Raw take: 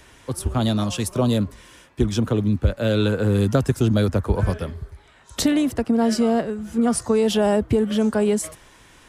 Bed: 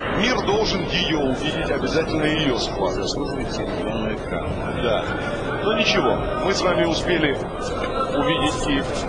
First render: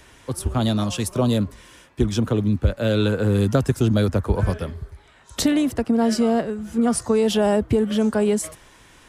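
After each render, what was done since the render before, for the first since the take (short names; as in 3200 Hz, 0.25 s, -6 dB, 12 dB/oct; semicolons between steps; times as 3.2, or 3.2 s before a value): nothing audible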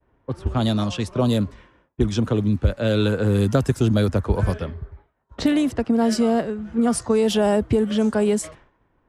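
expander -41 dBFS; low-pass opened by the level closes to 910 Hz, open at -15.5 dBFS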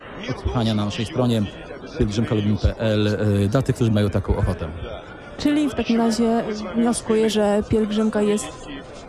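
add bed -13 dB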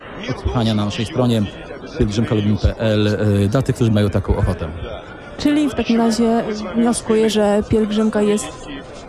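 gain +3.5 dB; limiter -3 dBFS, peak gain reduction 2 dB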